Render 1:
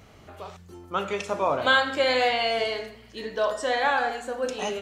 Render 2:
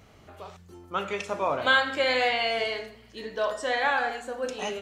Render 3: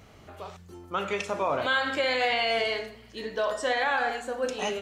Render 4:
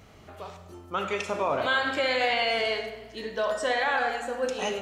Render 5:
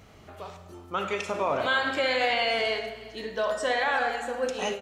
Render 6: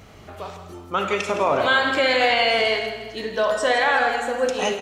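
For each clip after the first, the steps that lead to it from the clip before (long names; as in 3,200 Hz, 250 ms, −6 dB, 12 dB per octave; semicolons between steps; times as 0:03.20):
dynamic equaliser 2,100 Hz, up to +4 dB, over −37 dBFS, Q 1.3; level −3 dB
brickwall limiter −19 dBFS, peak gain reduction 7.5 dB; level +2 dB
comb and all-pass reverb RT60 1.3 s, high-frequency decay 0.6×, pre-delay 30 ms, DRR 9.5 dB
single-tap delay 359 ms −19.5 dB; every ending faded ahead of time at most 170 dB per second
single-tap delay 164 ms −11.5 dB; level +6.5 dB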